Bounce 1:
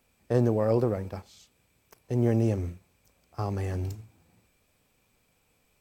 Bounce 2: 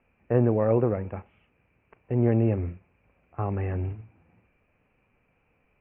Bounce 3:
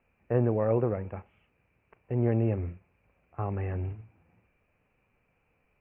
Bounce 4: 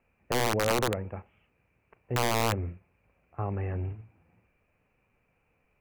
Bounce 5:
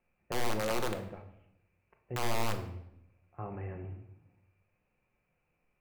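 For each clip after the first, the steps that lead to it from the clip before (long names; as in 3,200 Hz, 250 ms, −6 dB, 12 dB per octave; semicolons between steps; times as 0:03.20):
Butterworth low-pass 2,800 Hz 96 dB per octave; level +2 dB
parametric band 260 Hz −2.5 dB 0.77 octaves; level −3 dB
wrap-around overflow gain 18.5 dB
convolution reverb RT60 0.75 s, pre-delay 5 ms, DRR 4.5 dB; level −8 dB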